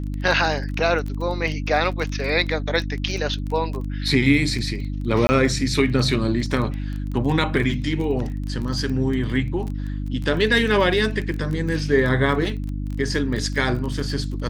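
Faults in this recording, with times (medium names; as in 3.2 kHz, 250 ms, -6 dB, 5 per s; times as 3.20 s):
crackle 19 per s -27 dBFS
hum 50 Hz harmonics 6 -27 dBFS
5.27–5.29 s: dropout 20 ms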